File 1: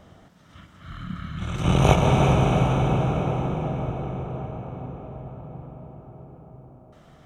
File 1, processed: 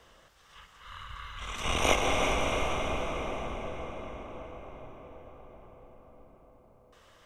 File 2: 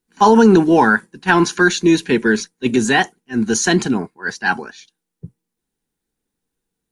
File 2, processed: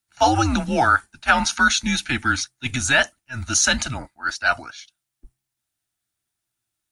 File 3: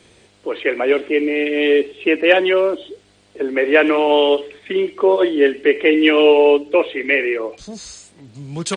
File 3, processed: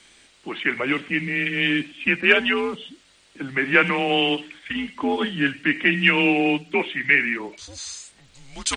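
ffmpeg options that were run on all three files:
-af "afreqshift=-130,tiltshelf=f=650:g=-7.5,volume=-5.5dB"

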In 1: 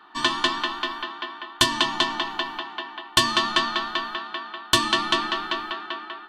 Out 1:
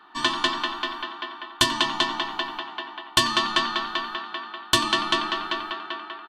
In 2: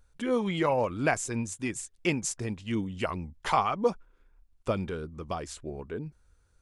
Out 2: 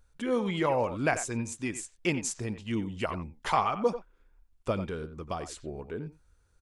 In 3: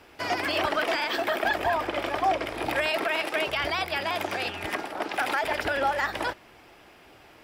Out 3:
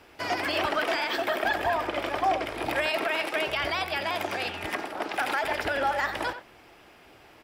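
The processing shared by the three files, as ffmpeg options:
-filter_complex "[0:a]asplit=2[a][b];[b]adelay=90,highpass=300,lowpass=3.4k,asoftclip=type=hard:threshold=-9dB,volume=-11dB[c];[a][c]amix=inputs=2:normalize=0,volume=-1dB"

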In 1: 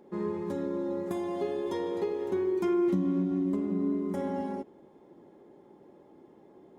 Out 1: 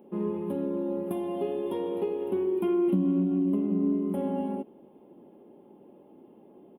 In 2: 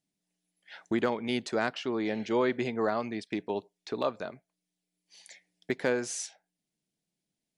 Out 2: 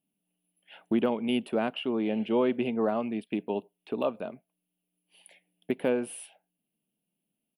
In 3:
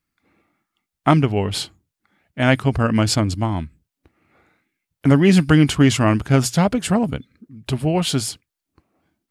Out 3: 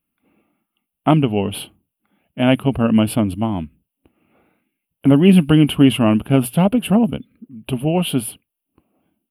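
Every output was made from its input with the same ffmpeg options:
-af "firequalizer=gain_entry='entry(110,0);entry(220,10);entry(330,5);entry(600,6);entry(1900,-6);entry(2800,10);entry(4000,-10);entry(6500,-26);entry(10000,10)':delay=0.05:min_phase=1,volume=-4dB"

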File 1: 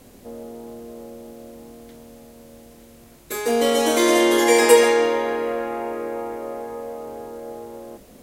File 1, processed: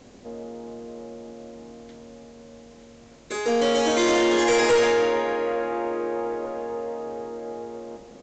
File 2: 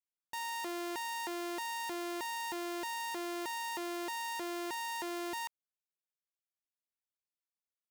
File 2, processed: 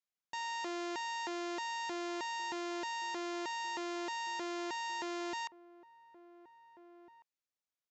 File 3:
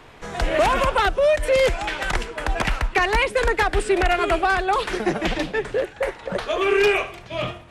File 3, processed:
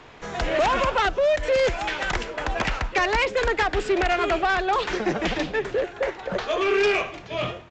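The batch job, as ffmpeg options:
-filter_complex "[0:a]lowshelf=f=77:g=-6,aresample=16000,asoftclip=type=tanh:threshold=-15dB,aresample=44100,asplit=2[a][b];[b]adelay=1749,volume=-17dB,highshelf=f=4k:g=-39.4[c];[a][c]amix=inputs=2:normalize=0"

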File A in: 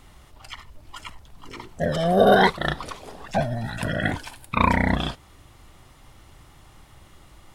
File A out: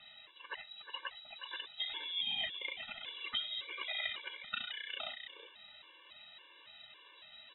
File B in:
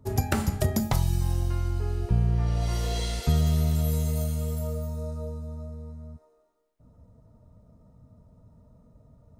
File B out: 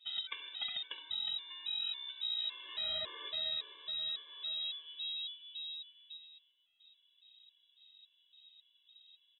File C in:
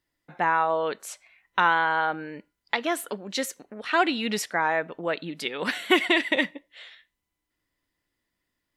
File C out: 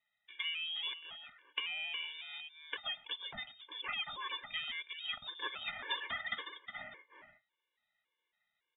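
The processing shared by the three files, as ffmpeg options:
-af "lowshelf=f=460:g=-10.5,acompressor=threshold=-36dB:ratio=6,aecho=1:1:363:0.355,lowpass=f=3.3k:t=q:w=0.5098,lowpass=f=3.3k:t=q:w=0.6013,lowpass=f=3.3k:t=q:w=0.9,lowpass=f=3.3k:t=q:w=2.563,afreqshift=-3900,afftfilt=real='re*gt(sin(2*PI*1.8*pts/sr)*(1-2*mod(floor(b*sr/1024/300),2)),0)':imag='im*gt(sin(2*PI*1.8*pts/sr)*(1-2*mod(floor(b*sr/1024/300),2)),0)':win_size=1024:overlap=0.75,volume=2dB"

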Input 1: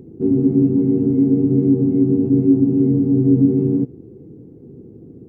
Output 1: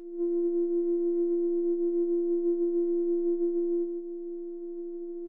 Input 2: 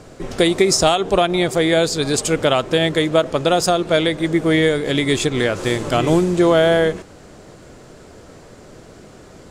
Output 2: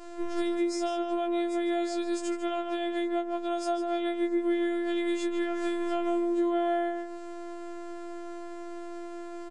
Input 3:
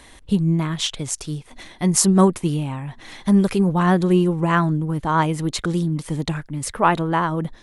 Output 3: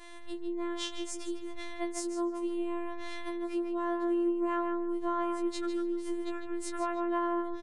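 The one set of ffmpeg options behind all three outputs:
-filter_complex "[0:a]aresample=22050,aresample=44100,acompressor=threshold=-28dB:ratio=10,highshelf=f=8.6k:g=12,asoftclip=type=tanh:threshold=-14.5dB,aemphasis=mode=reproduction:type=75kf,afftfilt=real='hypot(re,im)*cos(PI*b)':imag='0':win_size=512:overlap=0.75,asplit=2[a][b];[b]adelay=151,lowpass=f=3.7k:p=1,volume=-5.5dB,asplit=2[c][d];[d]adelay=151,lowpass=f=3.7k:p=1,volume=0.21,asplit=2[e][f];[f]adelay=151,lowpass=f=3.7k:p=1,volume=0.21[g];[a][c][e][g]amix=inputs=4:normalize=0,afftfilt=real='re*4*eq(mod(b,16),0)':imag='im*4*eq(mod(b,16),0)':win_size=2048:overlap=0.75,volume=-7dB"

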